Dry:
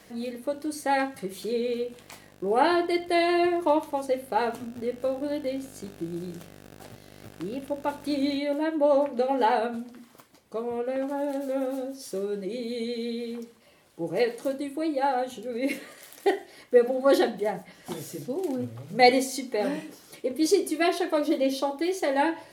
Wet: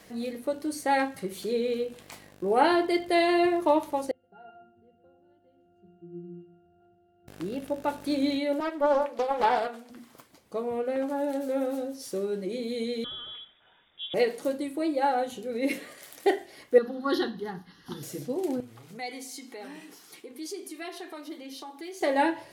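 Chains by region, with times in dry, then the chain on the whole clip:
0:04.11–0:07.28: resonances in every octave F, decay 0.62 s + repeating echo 124 ms, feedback 28%, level −11.5 dB
0:08.60–0:09.90: high-pass filter 490 Hz + highs frequency-modulated by the lows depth 0.27 ms
0:13.04–0:14.14: flat-topped bell 510 Hz −8.5 dB 2.6 octaves + voice inversion scrambler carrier 3,600 Hz
0:16.78–0:18.03: Bessel low-pass filter 9,400 Hz + phaser with its sweep stopped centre 2,300 Hz, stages 6
0:18.60–0:22.01: high-pass filter 390 Hz 6 dB per octave + downward compressor 2 to 1, threshold −43 dBFS + parametric band 560 Hz −14.5 dB 0.26 octaves
whole clip: no processing

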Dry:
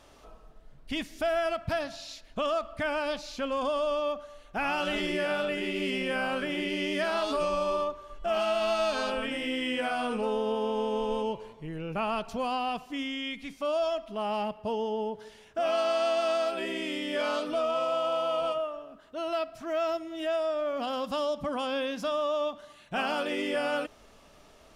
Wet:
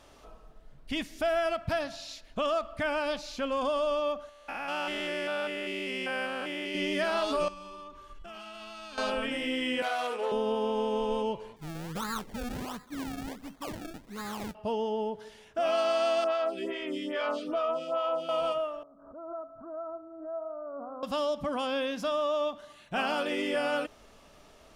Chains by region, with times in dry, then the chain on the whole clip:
0:04.29–0:06.75: spectrum averaged block by block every 200 ms + low-shelf EQ 280 Hz −11.5 dB
0:07.48–0:08.98: parametric band 630 Hz −11 dB 0.91 octaves + downward compressor, threshold −42 dBFS
0:09.82–0:10.32: phase distortion by the signal itself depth 0.098 ms + high-pass filter 370 Hz 24 dB per octave
0:11.56–0:14.55: phaser with its sweep stopped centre 2,500 Hz, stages 6 + sample-and-hold swept by an LFO 30× 1.4 Hz
0:16.24–0:18.29: high-shelf EQ 7,100 Hz −9.5 dB + hollow resonant body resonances 370/1,200/3,100 Hz, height 6 dB + phaser with staggered stages 2.4 Hz
0:18.83–0:21.03: Butterworth low-pass 1,400 Hz 72 dB per octave + tuned comb filter 94 Hz, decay 1.7 s, mix 70% + background raised ahead of every attack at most 74 dB per second
whole clip: no processing

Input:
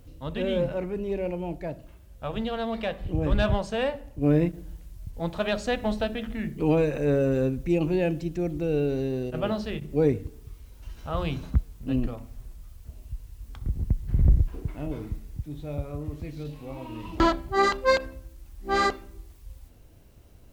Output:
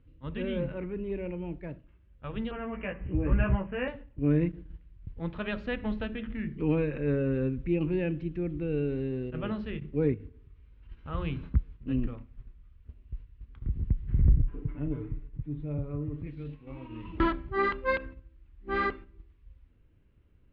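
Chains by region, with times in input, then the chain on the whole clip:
0:02.51–0:03.88: Butterworth low-pass 2,800 Hz 72 dB per octave + double-tracking delay 16 ms −3 dB
0:10.14–0:10.89: double-tracking delay 20 ms −13 dB + flutter between parallel walls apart 10 metres, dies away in 0.48 s + downward compressor 3 to 1, threshold −38 dBFS
0:14.36–0:16.27: high-shelf EQ 2,100 Hz −11 dB + comb filter 6.9 ms, depth 84%
whole clip: noise gate −38 dBFS, range −7 dB; low-pass filter 2,800 Hz 24 dB per octave; parametric band 700 Hz −12.5 dB 0.76 octaves; level −2.5 dB

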